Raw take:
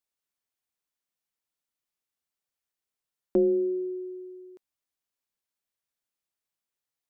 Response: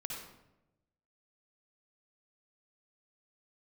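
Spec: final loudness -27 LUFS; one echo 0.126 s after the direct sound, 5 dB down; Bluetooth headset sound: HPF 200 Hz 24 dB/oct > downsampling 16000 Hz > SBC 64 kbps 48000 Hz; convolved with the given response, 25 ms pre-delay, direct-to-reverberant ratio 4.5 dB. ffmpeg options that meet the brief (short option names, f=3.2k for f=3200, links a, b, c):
-filter_complex "[0:a]aecho=1:1:126:0.562,asplit=2[a][b];[1:a]atrim=start_sample=2205,adelay=25[c];[b][c]afir=irnorm=-1:irlink=0,volume=-4.5dB[d];[a][d]amix=inputs=2:normalize=0,highpass=f=200:w=0.5412,highpass=f=200:w=1.3066,aresample=16000,aresample=44100,volume=-1dB" -ar 48000 -c:a sbc -b:a 64k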